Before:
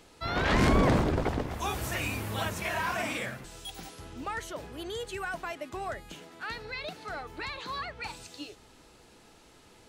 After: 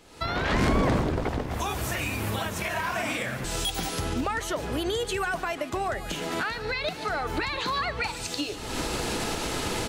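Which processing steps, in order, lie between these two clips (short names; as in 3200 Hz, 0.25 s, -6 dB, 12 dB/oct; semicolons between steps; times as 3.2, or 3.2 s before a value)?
recorder AGC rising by 51 dB/s; on a send: echo 0.147 s -15.5 dB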